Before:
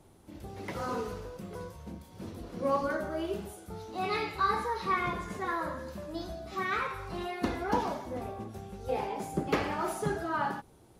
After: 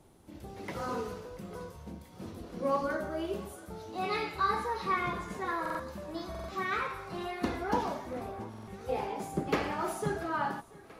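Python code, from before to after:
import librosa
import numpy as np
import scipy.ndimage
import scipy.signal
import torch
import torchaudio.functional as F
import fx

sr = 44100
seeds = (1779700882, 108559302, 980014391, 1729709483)

y = fx.hum_notches(x, sr, base_hz=50, count=2)
y = fx.echo_thinned(y, sr, ms=686, feedback_pct=76, hz=170.0, wet_db=-21.0)
y = fx.buffer_glitch(y, sr, at_s=(5.61, 6.3, 8.49), block=2048, repeats=3)
y = y * librosa.db_to_amplitude(-1.0)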